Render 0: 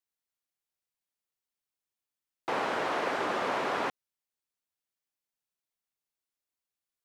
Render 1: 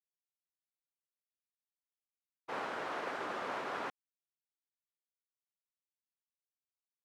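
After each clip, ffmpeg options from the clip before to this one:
-af "equalizer=f=1.4k:w=2.1:g=3,agate=range=-33dB:threshold=-27dB:ratio=3:detection=peak,volume=-8dB"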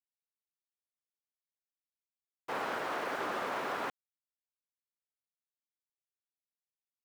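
-af "alimiter=level_in=7.5dB:limit=-24dB:level=0:latency=1,volume=-7.5dB,aeval=exprs='val(0)*gte(abs(val(0)),0.00237)':c=same,volume=5dB"

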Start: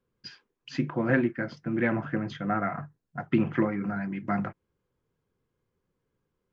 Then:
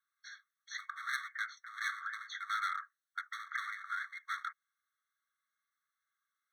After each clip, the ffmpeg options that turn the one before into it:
-af "volume=30dB,asoftclip=hard,volume=-30dB,afftfilt=real='re*eq(mod(floor(b*sr/1024/1100),2),1)':imag='im*eq(mod(floor(b*sr/1024/1100),2),1)':win_size=1024:overlap=0.75,volume=3dB"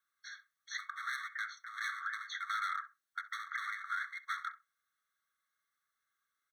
-filter_complex "[0:a]alimiter=level_in=5dB:limit=-24dB:level=0:latency=1:release=62,volume=-5dB,asplit=2[a][b];[b]adelay=65,lowpass=f=1.9k:p=1,volume=-14dB,asplit=2[c][d];[d]adelay=65,lowpass=f=1.9k:p=1,volume=0.18[e];[a][c][e]amix=inputs=3:normalize=0,volume=2dB"

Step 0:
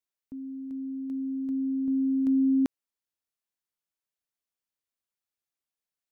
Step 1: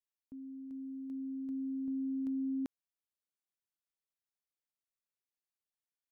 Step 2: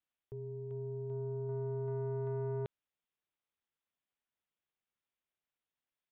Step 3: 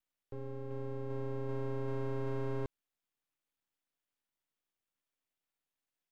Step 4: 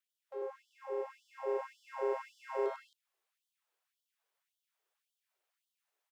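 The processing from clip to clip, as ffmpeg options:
-af "acompressor=threshold=-25dB:ratio=6,volume=-8.5dB"
-af "aresample=8000,asoftclip=type=tanh:threshold=-38.5dB,aresample=44100,aeval=exprs='val(0)*sin(2*PI*140*n/s)':c=same,volume=7dB"
-af "aeval=exprs='max(val(0),0)':c=same,volume=4.5dB"
-af "tiltshelf=f=1.5k:g=4.5,aecho=1:1:99.13|227.4|268.2:0.794|0.562|0.631,afftfilt=real='re*gte(b*sr/1024,330*pow(3000/330,0.5+0.5*sin(2*PI*1.8*pts/sr)))':imag='im*gte(b*sr/1024,330*pow(3000/330,0.5+0.5*sin(2*PI*1.8*pts/sr)))':win_size=1024:overlap=0.75,volume=4dB"

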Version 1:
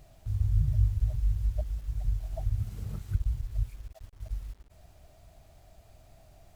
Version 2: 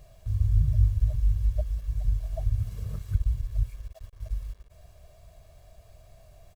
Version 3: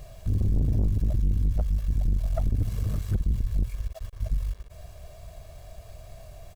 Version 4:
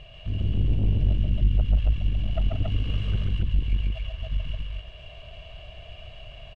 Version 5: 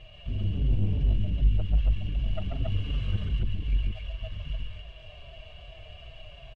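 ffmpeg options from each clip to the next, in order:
-af "aecho=1:1:1.8:0.6"
-filter_complex "[0:a]asplit=2[a][b];[b]alimiter=limit=-22.5dB:level=0:latency=1:release=143,volume=1dB[c];[a][c]amix=inputs=2:normalize=0,aeval=exprs='(tanh(14.1*val(0)+0.4)-tanh(0.4))/14.1':c=same,volume=3dB"
-filter_complex "[0:a]lowpass=f=2.9k:t=q:w=14,asplit=2[a][b];[b]aecho=0:1:137|177.8|277:0.794|0.282|0.891[c];[a][c]amix=inputs=2:normalize=0,volume=-3.5dB"
-filter_complex "[0:a]asplit=2[a][b];[b]adelay=5.8,afreqshift=-2.6[c];[a][c]amix=inputs=2:normalize=1"

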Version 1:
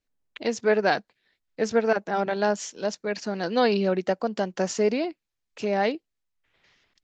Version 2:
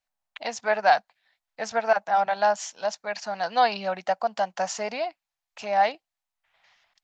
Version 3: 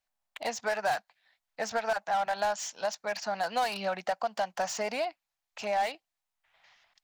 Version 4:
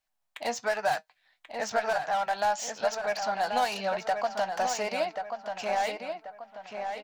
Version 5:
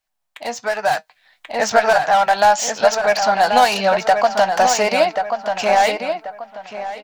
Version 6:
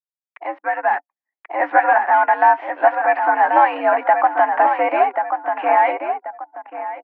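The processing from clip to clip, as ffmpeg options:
-af "lowshelf=f=530:t=q:w=3:g=-11"
-filter_complex "[0:a]acrossover=split=1100[a][b];[a]acompressor=threshold=-29dB:ratio=6[c];[b]volume=33dB,asoftclip=hard,volume=-33dB[d];[c][d]amix=inputs=2:normalize=0"
-filter_complex "[0:a]flanger=delay=6.3:depth=2.1:regen=66:speed=1:shape=sinusoidal,asplit=2[a][b];[b]adelay=1085,lowpass=f=3k:p=1,volume=-6dB,asplit=2[c][d];[d]adelay=1085,lowpass=f=3k:p=1,volume=0.39,asplit=2[e][f];[f]adelay=1085,lowpass=f=3k:p=1,volume=0.39,asplit=2[g][h];[h]adelay=1085,lowpass=f=3k:p=1,volume=0.39,asplit=2[i][j];[j]adelay=1085,lowpass=f=3k:p=1,volume=0.39[k];[c][e][g][i][k]amix=inputs=5:normalize=0[l];[a][l]amix=inputs=2:normalize=0,volume=5.5dB"
-af "dynaudnorm=f=280:g=7:m=10dB,volume=4dB"
-af "anlmdn=3.98,highpass=f=200:t=q:w=0.5412,highpass=f=200:t=q:w=1.307,lowpass=f=2.1k:t=q:w=0.5176,lowpass=f=2.1k:t=q:w=0.7071,lowpass=f=2.1k:t=q:w=1.932,afreqshift=84"

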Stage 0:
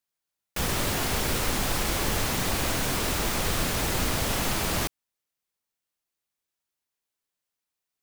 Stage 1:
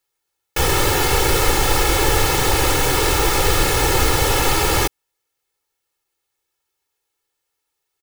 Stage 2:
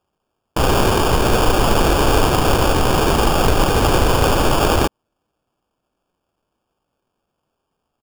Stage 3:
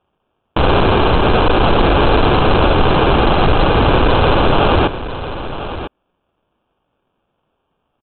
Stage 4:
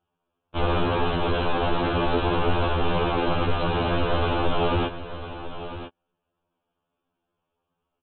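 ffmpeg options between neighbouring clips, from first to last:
-af "equalizer=f=590:w=0.35:g=3,aecho=1:1:2.3:0.9,volume=6dB"
-af "acrusher=samples=22:mix=1:aa=0.000001,volume=2dB"
-af "aresample=8000,asoftclip=type=hard:threshold=-14.5dB,aresample=44100,aecho=1:1:999:0.251,volume=6dB"
-af "afftfilt=real='re*2*eq(mod(b,4),0)':imag='im*2*eq(mod(b,4),0)':win_size=2048:overlap=0.75,volume=-9dB"

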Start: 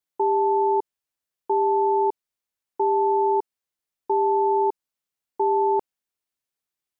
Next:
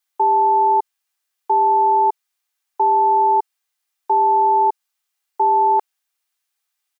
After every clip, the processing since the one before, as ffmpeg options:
-af "highpass=870,acontrast=49,aecho=1:1:2.5:0.31,volume=4dB"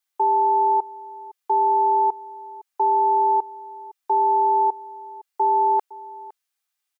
-af "aecho=1:1:510:0.106,volume=-3.5dB"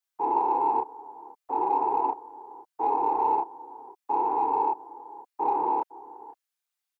-filter_complex "[0:a]afftfilt=real='hypot(re,im)*cos(2*PI*random(0))':imag='hypot(re,im)*sin(2*PI*random(1))':win_size=512:overlap=0.75,asplit=2[a][b];[b]adelay=29,volume=-2dB[c];[a][c]amix=inputs=2:normalize=0,acrossover=split=570|580[d][e][f];[e]asoftclip=type=tanh:threshold=-39dB[g];[d][g][f]amix=inputs=3:normalize=0,volume=-2dB"

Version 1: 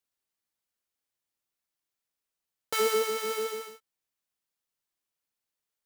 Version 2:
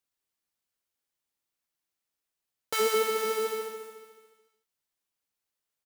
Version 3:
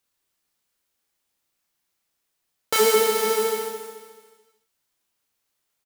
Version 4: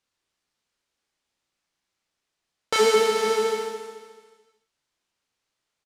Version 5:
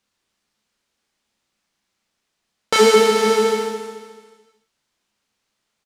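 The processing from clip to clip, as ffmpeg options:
-af "aecho=1:1:216|432|648|864:0.355|0.142|0.0568|0.0227"
-filter_complex "[0:a]asplit=2[a][b];[b]adelay=33,volume=-5dB[c];[a][c]amix=inputs=2:normalize=0,volume=8.5dB"
-af "lowpass=6.4k"
-af "equalizer=f=210:t=o:w=0.29:g=8.5,volume=6dB"

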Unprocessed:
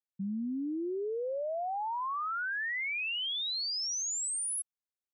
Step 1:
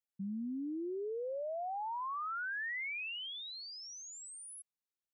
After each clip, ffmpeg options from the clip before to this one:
-filter_complex "[0:a]acrossover=split=2700[a][b];[b]acompressor=threshold=-46dB:ratio=4:attack=1:release=60[c];[a][c]amix=inputs=2:normalize=0,volume=-4.5dB"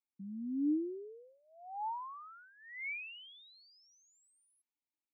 -filter_complex "[0:a]asplit=3[a][b][c];[a]bandpass=f=300:t=q:w=8,volume=0dB[d];[b]bandpass=f=870:t=q:w=8,volume=-6dB[e];[c]bandpass=f=2.24k:t=q:w=8,volume=-9dB[f];[d][e][f]amix=inputs=3:normalize=0,equalizer=f=600:t=o:w=0.51:g=-8.5,volume=10dB"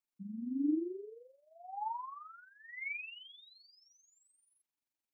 -af "tremolo=f=23:d=0.621,volume=3dB"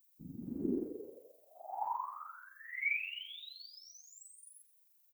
-af "aemphasis=mode=production:type=riaa,afftfilt=real='hypot(re,im)*cos(2*PI*random(0))':imag='hypot(re,im)*sin(2*PI*random(1))':win_size=512:overlap=0.75,aecho=1:1:109|218|327|436:0.119|0.057|0.0274|0.0131,volume=8dB"

